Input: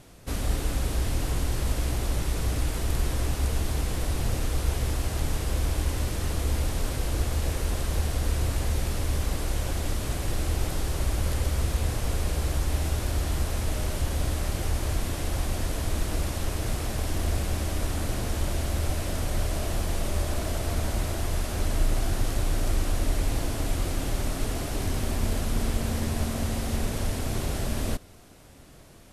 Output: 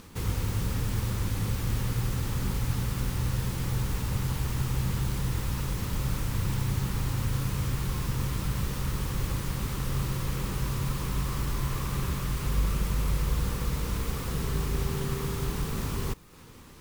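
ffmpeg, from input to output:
ffmpeg -i in.wav -filter_complex "[0:a]equalizer=frequency=380:width=3:gain=-12.5,acrossover=split=6900[link_01][link_02];[link_01]acompressor=mode=upward:threshold=-40dB:ratio=2.5[link_03];[link_03][link_02]amix=inputs=2:normalize=0,asetrate=76440,aresample=44100,volume=-2.5dB" out.wav

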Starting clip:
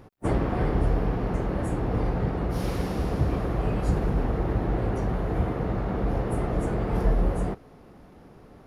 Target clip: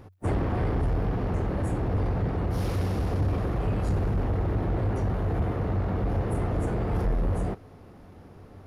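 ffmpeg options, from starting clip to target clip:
ffmpeg -i in.wav -af "equalizer=frequency=93:width_type=o:width=0.24:gain=14.5,asoftclip=type=tanh:threshold=-20dB" out.wav

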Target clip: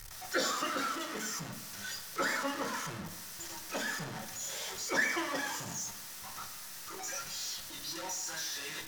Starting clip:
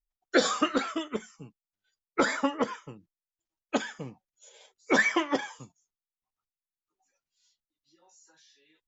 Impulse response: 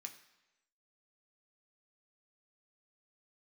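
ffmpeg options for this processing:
-filter_complex "[0:a]aeval=exprs='val(0)+0.5*0.0562*sgn(val(0))':channel_layout=same[link_01];[1:a]atrim=start_sample=2205,asetrate=33516,aresample=44100[link_02];[link_01][link_02]afir=irnorm=-1:irlink=0,volume=-5.5dB"

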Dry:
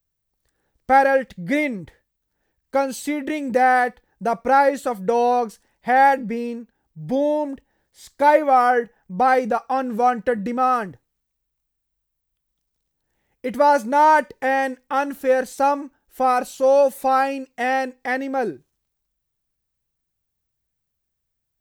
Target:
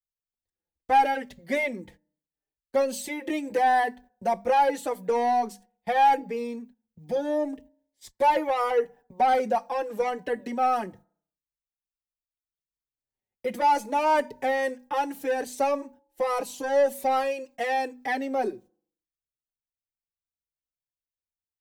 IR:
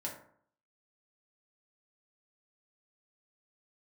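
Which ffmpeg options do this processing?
-filter_complex "[0:a]bandreject=frequency=50:width_type=h:width=6,bandreject=frequency=100:width_type=h:width=6,bandreject=frequency=150:width_type=h:width=6,bandreject=frequency=200:width_type=h:width=6,bandreject=frequency=250:width_type=h:width=6,agate=range=-21dB:threshold=-44dB:ratio=16:detection=peak,equalizer=frequency=1400:width_type=o:width=0.61:gain=-8.5,acrossover=split=290|1200[link_01][link_02][link_03];[link_01]acompressor=threshold=-42dB:ratio=6[link_04];[link_04][link_02][link_03]amix=inputs=3:normalize=0,asoftclip=type=tanh:threshold=-14.5dB,asplit=2[link_05][link_06];[1:a]atrim=start_sample=2205,lowpass=2000[link_07];[link_06][link_07]afir=irnorm=-1:irlink=0,volume=-23dB[link_08];[link_05][link_08]amix=inputs=2:normalize=0,asplit=2[link_09][link_10];[link_10]adelay=4.7,afreqshift=-0.77[link_11];[link_09][link_11]amix=inputs=2:normalize=1,volume=1dB"

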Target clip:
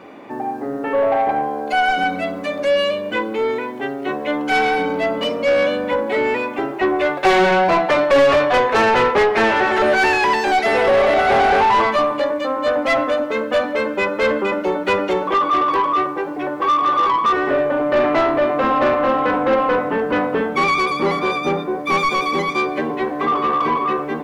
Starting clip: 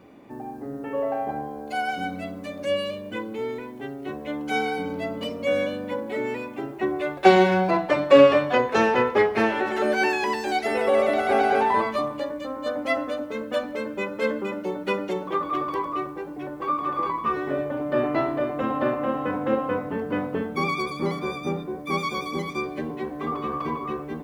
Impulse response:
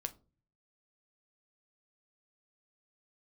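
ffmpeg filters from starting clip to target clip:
-filter_complex "[0:a]asplit=2[link_01][link_02];[link_02]highpass=frequency=720:poles=1,volume=26dB,asoftclip=type=tanh:threshold=-2.5dB[link_03];[link_01][link_03]amix=inputs=2:normalize=0,lowpass=frequency=2400:poles=1,volume=-6dB,volume=-3.5dB"

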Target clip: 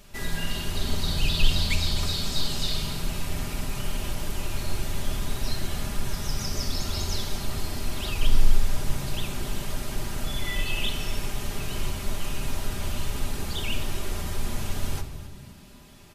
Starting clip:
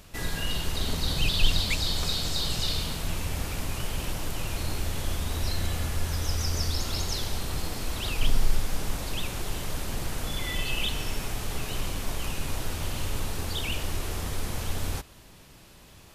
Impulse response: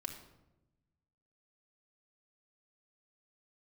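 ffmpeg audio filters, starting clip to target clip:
-filter_complex "[0:a]asplit=5[link_01][link_02][link_03][link_04][link_05];[link_02]adelay=258,afreqshift=59,volume=-15.5dB[link_06];[link_03]adelay=516,afreqshift=118,volume=-21.7dB[link_07];[link_04]adelay=774,afreqshift=177,volume=-27.9dB[link_08];[link_05]adelay=1032,afreqshift=236,volume=-34.1dB[link_09];[link_01][link_06][link_07][link_08][link_09]amix=inputs=5:normalize=0,asplit=2[link_10][link_11];[1:a]atrim=start_sample=2205,adelay=5[link_12];[link_11][link_12]afir=irnorm=-1:irlink=0,volume=1dB[link_13];[link_10][link_13]amix=inputs=2:normalize=0,volume=-3dB"

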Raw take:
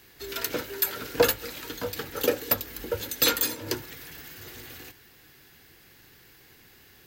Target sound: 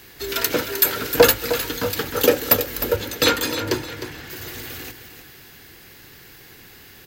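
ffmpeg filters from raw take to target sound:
ffmpeg -i in.wav -filter_complex "[0:a]asettb=1/sr,asplit=3[link_01][link_02][link_03];[link_01]atrim=end=2.964[link_04];[link_02]atrim=start=2.96:end=4.3,asetpts=PTS-STARTPTS,afade=type=in:duration=0.004:curve=qsin,afade=type=out:start_time=1.336:duration=0.004:curve=qsin,aemphasis=mode=reproduction:type=50kf[link_05];[link_03]atrim=start=4.296[link_06];[link_04][link_05]acrossfade=duration=0.004:curve1=hsin:curve2=qsin[link_07];[link_07][link_06]acrossfade=duration=0.004:curve1=qsin:curve2=hsin,acontrast=83,aecho=1:1:308|616|924:0.299|0.0955|0.0306,volume=2dB" out.wav

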